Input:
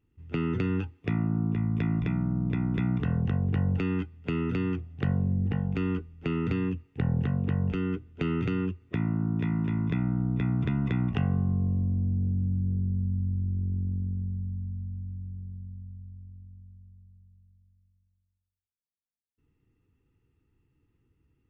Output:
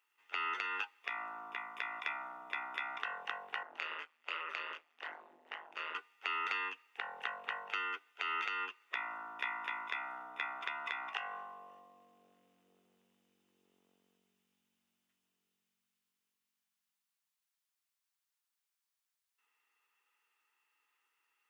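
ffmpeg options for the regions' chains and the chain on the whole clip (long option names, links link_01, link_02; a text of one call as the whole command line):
ffmpeg -i in.wav -filter_complex "[0:a]asettb=1/sr,asplit=3[link_01][link_02][link_03];[link_01]atrim=end=3.634[link_04];[link_02]atrim=start=3.63:end=5.95,asetpts=PTS-STARTPTS,afade=type=in:duration=0.004:curve=qsin,afade=type=out:start_time=2.316:duration=0.004:curve=qsin,flanger=delay=17.5:depth=6.8:speed=2.5,tremolo=f=160:d=0.947[link_05];[link_03]atrim=start=5.946[link_06];[link_04][link_05]acrossfade=duration=0.004:curve1=hsin:curve2=qsin[link_07];[link_07][link_06]acrossfade=duration=0.004:curve1=qsin:curve2=hsin,highpass=frequency=870:width=0.5412,highpass=frequency=870:width=1.3066,alimiter=level_in=4.5dB:limit=-24dB:level=0:latency=1:release=199,volume=-4.5dB,volume=7.5dB" out.wav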